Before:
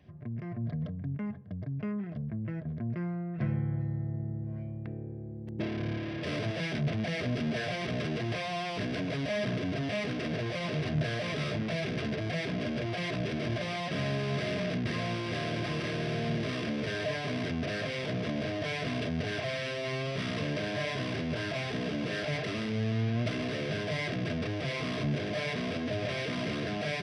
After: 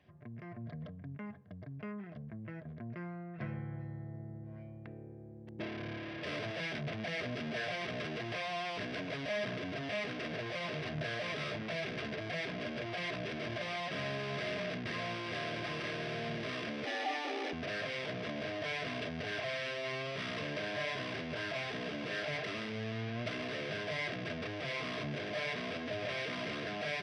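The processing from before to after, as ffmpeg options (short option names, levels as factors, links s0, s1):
-filter_complex "[0:a]asettb=1/sr,asplit=3[s0][s1][s2];[s0]atrim=end=16.854[s3];[s1]atrim=start=16.85:end=17.53,asetpts=PTS-STARTPTS,afade=t=in:d=0.004:c=qsin,afade=t=out:st=0.676:d=0.004:c=qsin,afreqshift=150[s4];[s2]atrim=start=17.526[s5];[s3][s4]acrossfade=d=0.004:c1=hsin:c2=qsin[s6];[s6][s5]acrossfade=d=0.004:c1=qsin:c2=hsin,lowpass=f=3500:p=1,lowshelf=f=420:g=-12"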